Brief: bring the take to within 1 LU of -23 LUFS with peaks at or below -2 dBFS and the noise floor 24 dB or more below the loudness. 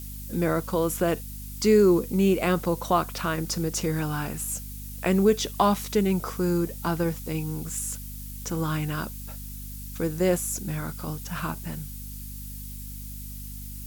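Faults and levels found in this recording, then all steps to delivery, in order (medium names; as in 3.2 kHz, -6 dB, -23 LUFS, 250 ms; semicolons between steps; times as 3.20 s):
hum 50 Hz; highest harmonic 250 Hz; hum level -37 dBFS; noise floor -38 dBFS; noise floor target -51 dBFS; loudness -26.5 LUFS; peak level -8.5 dBFS; loudness target -23.0 LUFS
-> de-hum 50 Hz, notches 5; noise print and reduce 13 dB; trim +3.5 dB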